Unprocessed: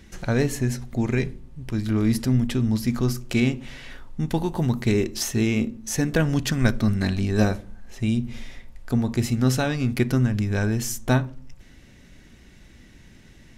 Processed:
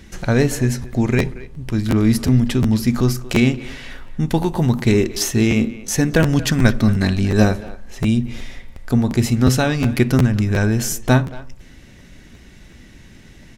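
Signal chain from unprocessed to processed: speakerphone echo 230 ms, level -16 dB; crackling interface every 0.36 s, samples 512, repeat, from 0.82 s; trim +6 dB

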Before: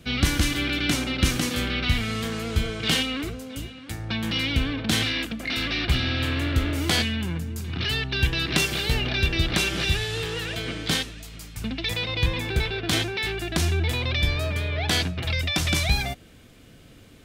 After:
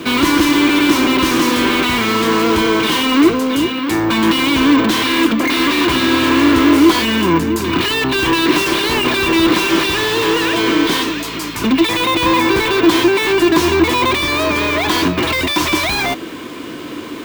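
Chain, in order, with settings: overdrive pedal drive 34 dB, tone 4.7 kHz, clips at -6 dBFS; small resonant body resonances 320/1000 Hz, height 16 dB, ringing for 30 ms; careless resampling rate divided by 2×, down none, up hold; trim -5 dB

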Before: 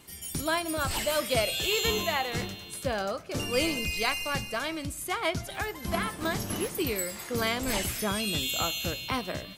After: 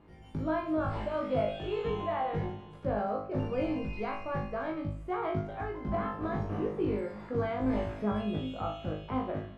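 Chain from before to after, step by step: in parallel at -0.5 dB: peak limiter -23.5 dBFS, peak gain reduction 10.5 dB; on the sum: low-pass 1 kHz 12 dB/octave; flutter echo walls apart 3.3 m, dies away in 0.43 s; trim -7.5 dB

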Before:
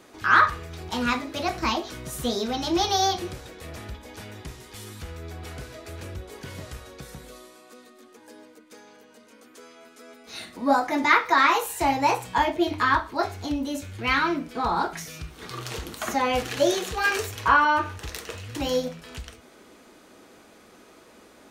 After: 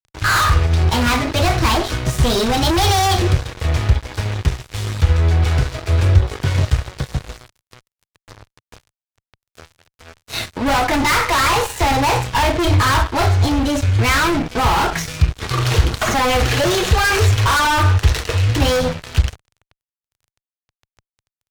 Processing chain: low-pass 5.8 kHz 12 dB/octave; hum notches 60/120/180 Hz; fuzz box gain 33 dB, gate -42 dBFS; resonant low shelf 150 Hz +10 dB, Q 1.5; trim -1 dB

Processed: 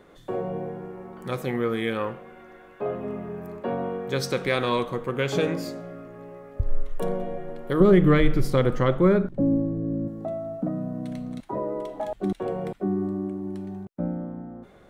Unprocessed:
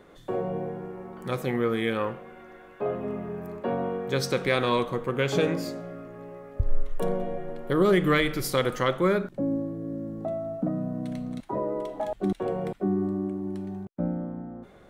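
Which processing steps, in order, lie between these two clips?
7.80–10.08 s: tilt EQ -3 dB/octave

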